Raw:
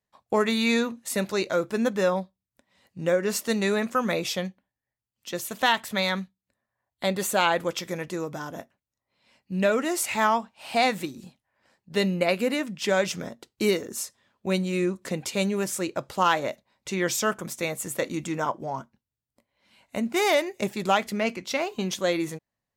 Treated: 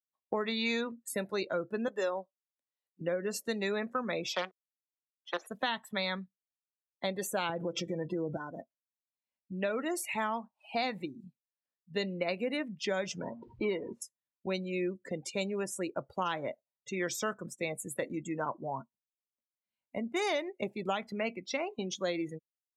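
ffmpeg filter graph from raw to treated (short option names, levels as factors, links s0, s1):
-filter_complex "[0:a]asettb=1/sr,asplit=3[s0][s1][s2];[s0]atrim=end=1.884[s3];[s1]atrim=start=1.88:end=3.01,asetpts=PTS-STARTPTS,afade=t=in:d=0.004:c=qsin,afade=t=out:st=1.126:d=0.004:c=qsin,highpass=f=290:w=0.5412,highpass=f=290:w=1.3066,highshelf=f=4900:g=6[s4];[s2]atrim=start=3.006[s5];[s3][s4]acrossfade=d=0.004:c1=hsin:c2=qsin[s6];[s6][s5]acrossfade=d=0.004:c1=qsin:c2=hsin,asettb=1/sr,asplit=3[s7][s8][s9];[s7]atrim=end=4.334[s10];[s8]atrim=start=4.33:end=5.47,asetpts=PTS-STARTPTS,afade=t=in:d=0.004:c=qsin,afade=t=out:st=1.136:d=0.004:c=qsin,acontrast=73,acrusher=bits=4:dc=4:mix=0:aa=0.000001,highpass=510,lowpass=5300[s11];[s9]atrim=start=5.466[s12];[s10][s11]acrossfade=d=0.004:c1=hsin:c2=qsin[s13];[s13][s12]acrossfade=d=0.004:c1=qsin:c2=hsin,asettb=1/sr,asplit=3[s14][s15][s16];[s14]atrim=end=7.494[s17];[s15]atrim=start=7.49:end=8.37,asetpts=PTS-STARTPTS,afade=t=in:d=0.004:c=qsin,afade=t=out:st=0.876:d=0.004:c=qsin,lowshelf=f=500:g=10,aecho=1:1:6:0.67,atrim=end_sample=38808,acompressor=threshold=0.0891:ratio=12:attack=3.2:release=140:knee=1:detection=peak[s18];[s16]atrim=start=8.366[s19];[s17][s18]acrossfade=d=0.004:c1=hsin:c2=qsin[s20];[s20][s19]acrossfade=d=0.004:c1=qsin:c2=hsin,asettb=1/sr,asplit=3[s21][s22][s23];[s21]atrim=end=13.184[s24];[s22]atrim=start=13.18:end=14.02,asetpts=PTS-STARTPTS,afade=t=in:d=0.004:c=qsin,afade=t=out:st=0.836:d=0.004:c=qsin,aeval=exprs='val(0)+0.5*0.0141*sgn(val(0))':c=same,lowpass=2800,equalizer=f=930:w=6.2:g=10.5[s25];[s23]atrim=start=14.016[s26];[s24][s25]acrossfade=d=0.004:c1=hsin:c2=qsin[s27];[s27][s26]acrossfade=d=0.004:c1=qsin:c2=hsin,afftdn=nr=32:nf=-34,equalizer=f=11000:t=o:w=0.35:g=8,acrossover=split=280|4200[s28][s29][s30];[s28]acompressor=threshold=0.0126:ratio=4[s31];[s29]acompressor=threshold=0.0501:ratio=4[s32];[s30]acompressor=threshold=0.0178:ratio=4[s33];[s31][s32][s33]amix=inputs=3:normalize=0,volume=0.596"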